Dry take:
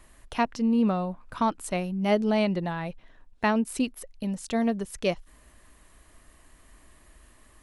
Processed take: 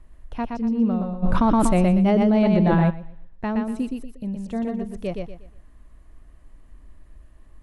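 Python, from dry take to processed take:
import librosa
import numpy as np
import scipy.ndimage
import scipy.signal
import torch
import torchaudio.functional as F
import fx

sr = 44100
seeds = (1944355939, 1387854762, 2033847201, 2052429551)

y = fx.tilt_eq(x, sr, slope=-3.0)
y = fx.echo_feedback(y, sr, ms=120, feedback_pct=29, wet_db=-4.0)
y = fx.env_flatten(y, sr, amount_pct=100, at=(1.22, 2.89), fade=0.02)
y = y * librosa.db_to_amplitude(-6.0)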